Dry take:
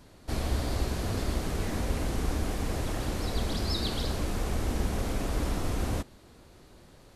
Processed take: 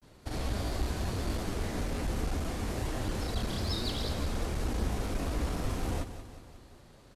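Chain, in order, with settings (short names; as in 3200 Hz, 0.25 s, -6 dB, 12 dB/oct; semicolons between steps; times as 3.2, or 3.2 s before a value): grains 93 ms, grains 27/s, spray 28 ms, pitch spread up and down by 0 st; one-sided clip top -28 dBFS; on a send: feedback echo 0.182 s, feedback 56%, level -12 dB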